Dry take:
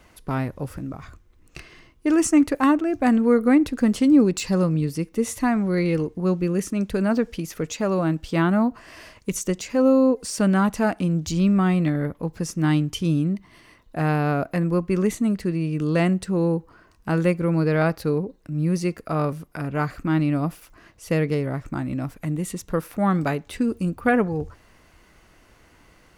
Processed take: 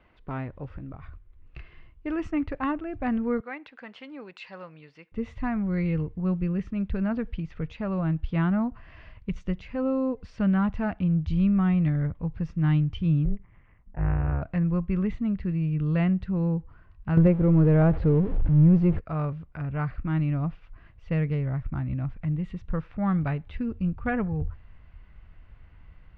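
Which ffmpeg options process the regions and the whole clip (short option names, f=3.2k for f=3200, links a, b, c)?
-filter_complex "[0:a]asettb=1/sr,asplit=3[a][b][c];[a]atrim=end=3.404[d];[b]atrim=start=3.4:end=5.12,asetpts=PTS-STARTPTS,afade=t=in:d=0.004:c=qsin,afade=t=out:st=1.716:d=0.004:c=qsin,highpass=770,equalizer=f=1.2k:t=o:w=0.22:g=-5[e];[c]atrim=start=5.116[f];[d][e]acrossfade=d=0.004:c1=hsin:c2=qsin[g];[g][f]acrossfade=d=0.004:c1=qsin:c2=hsin,asettb=1/sr,asplit=3[h][i][j];[h]atrim=end=13.254[k];[i]atrim=start=13.25:end=14.42,asetpts=PTS-STARTPTS,afade=t=in:d=0.004:c=qsin,afade=t=out:st=1.166:d=0.004:c=qsin,lowpass=f=2.3k:w=0.5412,lowpass=f=2.3k:w=1.3066,tremolo=f=210:d=0.974[l];[j]atrim=start=14.416[m];[k][l]acrossfade=d=0.004:c1=hsin:c2=qsin[n];[n][m]acrossfade=d=0.004:c1=qsin:c2=hsin,asettb=1/sr,asplit=3[o][p][q];[o]atrim=end=17.174[r];[p]atrim=start=17.17:end=18.99,asetpts=PTS-STARTPTS,afade=t=in:d=0.004:c=qsin,afade=t=out:st=1.816:d=0.004:c=qsin,aeval=exprs='val(0)+0.5*0.0355*sgn(val(0))':c=same,tiltshelf=f=1.1k:g=9[s];[q]atrim=start=18.986[t];[r][s]acrossfade=d=0.004:c1=hsin:c2=qsin[u];[u][t]acrossfade=d=0.004:c1=qsin:c2=hsin,lowpass=f=3.1k:w=0.5412,lowpass=f=3.1k:w=1.3066,asubboost=boost=9:cutoff=110,volume=-7.5dB"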